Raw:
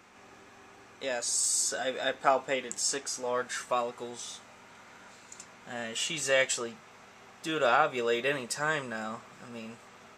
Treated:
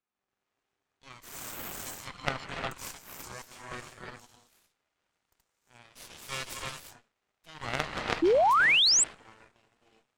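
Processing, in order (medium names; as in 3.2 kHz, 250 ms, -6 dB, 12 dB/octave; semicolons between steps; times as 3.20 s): gated-style reverb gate 380 ms rising, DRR -1.5 dB; Chebyshev shaper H 3 -7 dB, 5 -23 dB, 6 -23 dB, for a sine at -9 dBFS; painted sound rise, 8.22–9.04 s, 310–8400 Hz -22 dBFS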